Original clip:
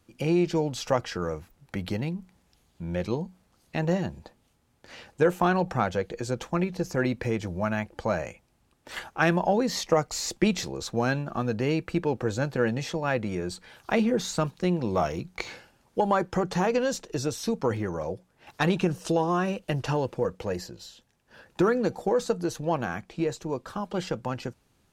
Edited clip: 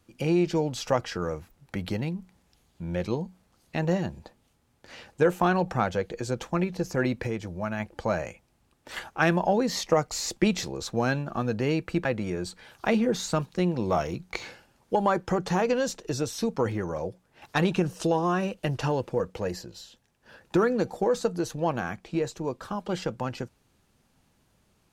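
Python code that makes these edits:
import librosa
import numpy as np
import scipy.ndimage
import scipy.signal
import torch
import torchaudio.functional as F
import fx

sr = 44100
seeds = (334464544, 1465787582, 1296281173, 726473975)

y = fx.edit(x, sr, fx.clip_gain(start_s=7.27, length_s=0.53, db=-3.5),
    fx.cut(start_s=12.05, length_s=1.05), tone=tone)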